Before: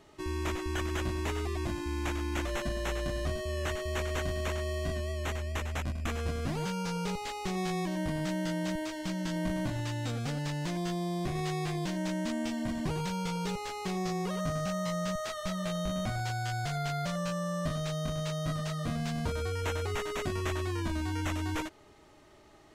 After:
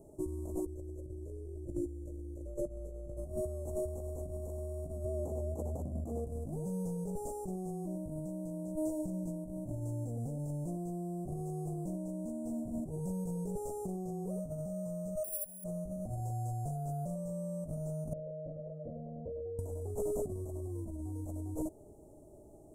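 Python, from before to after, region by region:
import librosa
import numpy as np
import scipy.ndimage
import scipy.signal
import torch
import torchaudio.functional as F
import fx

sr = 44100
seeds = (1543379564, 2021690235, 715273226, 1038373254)

y = fx.chain(x, sr, fx.cheby1_bandstop(low_hz=610.0, high_hz=2900.0, order=4),
    fx.high_shelf(hz=7500.0, db=-10.5),
    fx.comb(ms=2.2, depth=0.63), at=(0.66, 3.17))
y = fx.chain(y, sr, fx.high_shelf(hz=4800.0, db=-8.5),
    fx.over_compress(threshold_db=-35.0, ratio=-0.5),
    fx.highpass(hz=110.0, slope=12), at=(5.05, 6.27))
y = fx.chain(y, sr, fx.high_shelf(hz=6600.0, db=-9.0),
    fx.resample_bad(factor=4, down='filtered', up='zero_stuff'), at=(15.24, 15.64))
y = fx.chain(y, sr, fx.formant_cascade(vowel='e'),
    fx.env_flatten(amount_pct=50), at=(18.13, 19.59))
y = scipy.signal.sosfilt(scipy.signal.ellip(3, 1.0, 50, [640.0, 8400.0], 'bandstop', fs=sr, output='sos'), y)
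y = fx.over_compress(y, sr, threshold_db=-37.0, ratio=-0.5)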